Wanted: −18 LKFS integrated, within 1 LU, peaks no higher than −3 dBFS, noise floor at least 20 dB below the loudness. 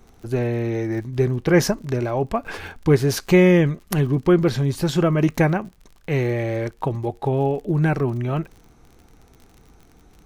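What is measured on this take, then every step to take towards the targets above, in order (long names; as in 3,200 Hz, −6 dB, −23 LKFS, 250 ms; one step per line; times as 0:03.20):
crackle rate 50 per second; integrated loudness −21.0 LKFS; sample peak −3.5 dBFS; target loudness −18.0 LKFS
→ click removal
level +3 dB
brickwall limiter −3 dBFS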